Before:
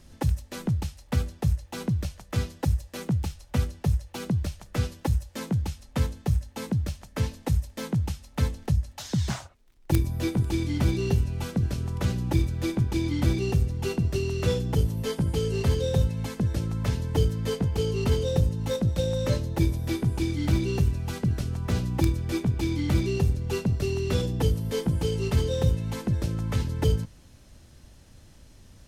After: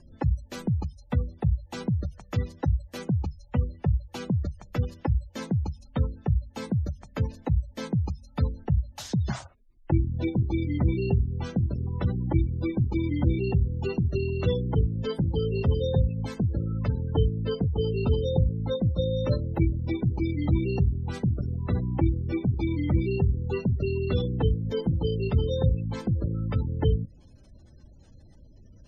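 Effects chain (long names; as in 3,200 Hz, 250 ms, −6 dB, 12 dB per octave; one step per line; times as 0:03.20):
gate on every frequency bin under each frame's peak −25 dB strong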